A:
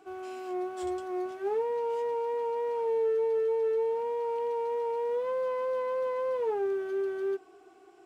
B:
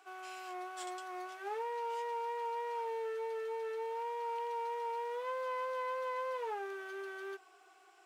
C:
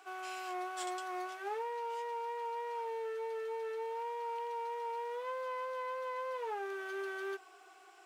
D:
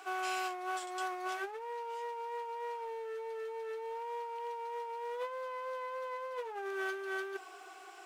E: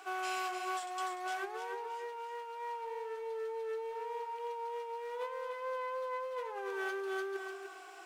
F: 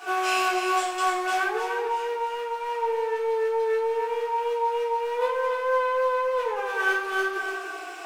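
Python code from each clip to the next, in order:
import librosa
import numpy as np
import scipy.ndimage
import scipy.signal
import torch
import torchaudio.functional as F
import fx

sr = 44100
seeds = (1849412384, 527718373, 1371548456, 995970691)

y1 = scipy.signal.sosfilt(scipy.signal.butter(2, 1000.0, 'highpass', fs=sr, output='sos'), x)
y1 = y1 * 10.0 ** (2.0 / 20.0)
y2 = fx.rider(y1, sr, range_db=4, speed_s=0.5)
y3 = fx.over_compress(y2, sr, threshold_db=-42.0, ratio=-0.5)
y3 = y3 * 10.0 ** (3.5 / 20.0)
y4 = fx.echo_feedback(y3, sr, ms=297, feedback_pct=23, wet_db=-6)
y4 = y4 * 10.0 ** (-1.0 / 20.0)
y5 = fx.room_shoebox(y4, sr, seeds[0], volume_m3=73.0, walls='mixed', distance_m=1.8)
y5 = y5 * 10.0 ** (5.5 / 20.0)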